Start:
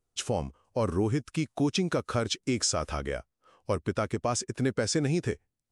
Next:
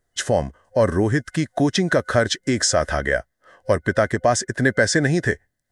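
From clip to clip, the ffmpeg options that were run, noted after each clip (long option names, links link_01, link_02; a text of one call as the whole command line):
ffmpeg -i in.wav -af "superequalizer=8b=2:11b=3.98:12b=0.562,volume=7.5dB" out.wav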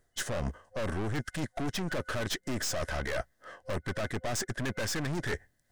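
ffmpeg -i in.wav -af "aeval=exprs='(tanh(22.4*val(0)+0.65)-tanh(0.65))/22.4':channel_layout=same,areverse,acompressor=threshold=-38dB:ratio=6,areverse,volume=7.5dB" out.wav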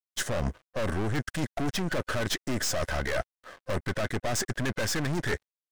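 ffmpeg -i in.wav -af "aeval=exprs='sgn(val(0))*max(abs(val(0))-0.00251,0)':channel_layout=same,volume=4.5dB" out.wav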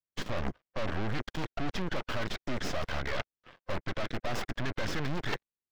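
ffmpeg -i in.wav -filter_complex "[0:a]aeval=exprs='0.158*(cos(1*acos(clip(val(0)/0.158,-1,1)))-cos(1*PI/2))+0.0501*(cos(3*acos(clip(val(0)/0.158,-1,1)))-cos(3*PI/2))+0.0112*(cos(5*acos(clip(val(0)/0.158,-1,1)))-cos(5*PI/2))+0.0501*(cos(6*acos(clip(val(0)/0.158,-1,1)))-cos(6*PI/2))':channel_layout=same,acrossover=split=530|5500[link_01][link_02][link_03];[link_03]acrusher=samples=40:mix=1:aa=0.000001:lfo=1:lforange=40:lforate=1.3[link_04];[link_01][link_02][link_04]amix=inputs=3:normalize=0,volume=-1.5dB" out.wav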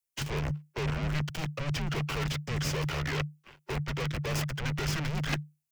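ffmpeg -i in.wav -filter_complex "[0:a]afreqshift=-150,acrossover=split=120|1400[link_01][link_02][link_03];[link_03]aexciter=amount=1.6:drive=6:freq=2100[link_04];[link_01][link_02][link_04]amix=inputs=3:normalize=0" out.wav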